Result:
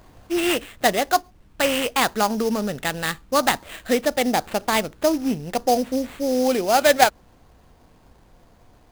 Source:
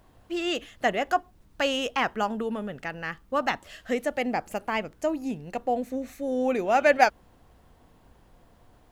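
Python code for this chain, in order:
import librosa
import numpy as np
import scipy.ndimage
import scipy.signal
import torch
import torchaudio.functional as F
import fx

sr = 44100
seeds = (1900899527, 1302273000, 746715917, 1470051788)

p1 = fx.rider(x, sr, range_db=5, speed_s=0.5)
p2 = x + F.gain(torch.from_numpy(p1), 0.0).numpy()
y = fx.sample_hold(p2, sr, seeds[0], rate_hz=5600.0, jitter_pct=20)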